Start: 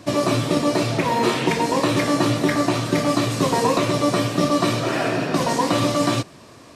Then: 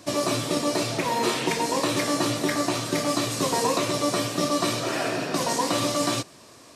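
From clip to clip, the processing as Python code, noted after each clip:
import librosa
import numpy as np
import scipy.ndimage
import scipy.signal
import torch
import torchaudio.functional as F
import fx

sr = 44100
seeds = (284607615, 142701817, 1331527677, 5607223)

y = fx.bass_treble(x, sr, bass_db=-5, treble_db=7)
y = F.gain(torch.from_numpy(y), -4.5).numpy()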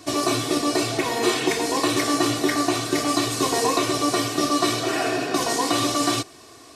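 y = x + 0.63 * np.pad(x, (int(2.7 * sr / 1000.0), 0))[:len(x)]
y = F.gain(torch.from_numpy(y), 1.5).numpy()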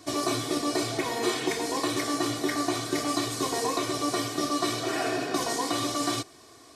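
y = fx.notch(x, sr, hz=2700.0, q=12.0)
y = fx.rider(y, sr, range_db=10, speed_s=0.5)
y = F.gain(torch.from_numpy(y), -6.0).numpy()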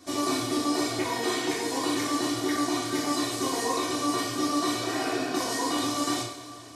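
y = fx.rev_double_slope(x, sr, seeds[0], early_s=0.56, late_s=3.9, knee_db=-18, drr_db=-3.0)
y = F.gain(torch.from_numpy(y), -4.5).numpy()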